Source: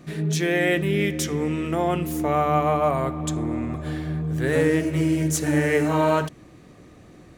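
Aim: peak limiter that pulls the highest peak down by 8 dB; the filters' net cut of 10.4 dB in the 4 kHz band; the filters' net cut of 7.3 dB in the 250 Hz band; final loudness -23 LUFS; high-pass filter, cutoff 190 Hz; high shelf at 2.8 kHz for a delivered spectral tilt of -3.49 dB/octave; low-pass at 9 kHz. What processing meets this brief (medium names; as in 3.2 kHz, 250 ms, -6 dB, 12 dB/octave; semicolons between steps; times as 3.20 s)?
high-pass 190 Hz; low-pass 9 kHz; peaking EQ 250 Hz -9 dB; treble shelf 2.8 kHz -8.5 dB; peaking EQ 4 kHz -7.5 dB; trim +7 dB; peak limiter -12 dBFS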